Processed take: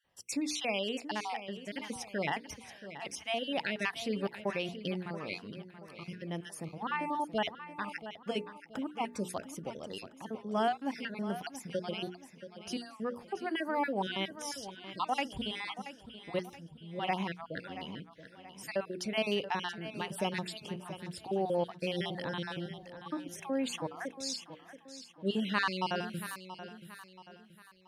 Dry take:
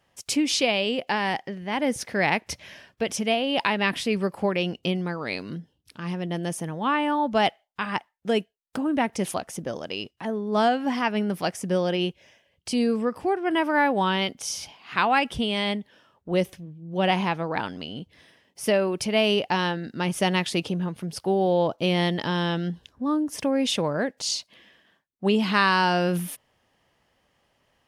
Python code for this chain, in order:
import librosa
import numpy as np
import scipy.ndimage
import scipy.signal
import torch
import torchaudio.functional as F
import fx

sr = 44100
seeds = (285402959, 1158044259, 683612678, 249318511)

y = fx.spec_dropout(x, sr, seeds[0], share_pct=39)
y = fx.hum_notches(y, sr, base_hz=60, count=8)
y = fx.echo_feedback(y, sr, ms=679, feedback_pct=41, wet_db=-12.5)
y = y * librosa.db_to_amplitude(-8.5)